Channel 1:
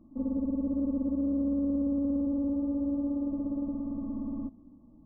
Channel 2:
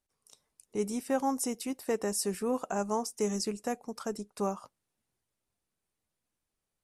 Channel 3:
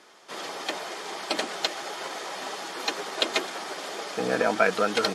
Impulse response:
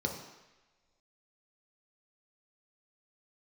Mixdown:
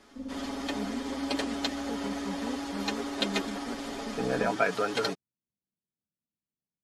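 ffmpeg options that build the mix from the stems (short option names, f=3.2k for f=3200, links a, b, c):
-filter_complex "[0:a]volume=-7.5dB[a];[1:a]bandpass=f=190:t=q:w=1.8:csg=0,volume=-1.5dB[b];[2:a]lowshelf=f=280:g=9,aecho=1:1:7.2:0.65,volume=-7dB[c];[a][b][c]amix=inputs=3:normalize=0"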